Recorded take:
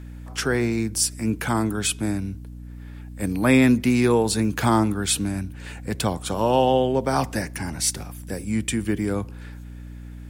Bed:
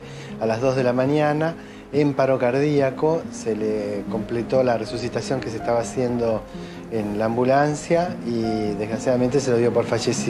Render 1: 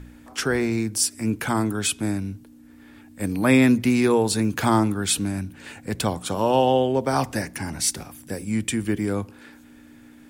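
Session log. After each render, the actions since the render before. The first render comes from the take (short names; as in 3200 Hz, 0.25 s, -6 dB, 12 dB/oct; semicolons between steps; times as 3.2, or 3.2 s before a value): de-hum 60 Hz, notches 3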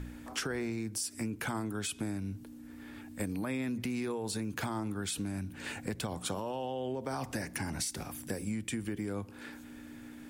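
limiter -16.5 dBFS, peak gain reduction 10 dB; compressor 6:1, threshold -33 dBFS, peak gain reduction 12 dB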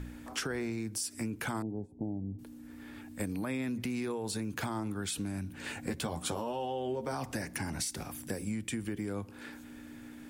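1.62–2.39 elliptic low-pass 830 Hz; 5.81–7.12 doubler 13 ms -5 dB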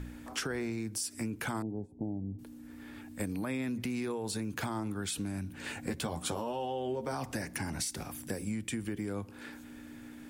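nothing audible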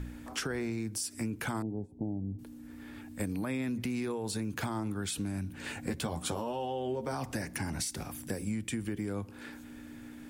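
low shelf 180 Hz +3 dB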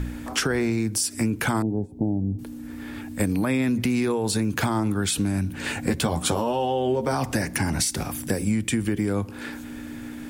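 gain +11 dB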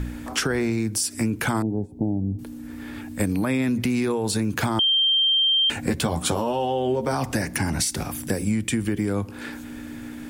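4.79–5.7 bleep 3160 Hz -16.5 dBFS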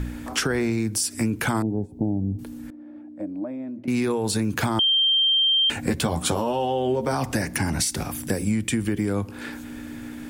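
2.7–3.88 double band-pass 430 Hz, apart 0.89 oct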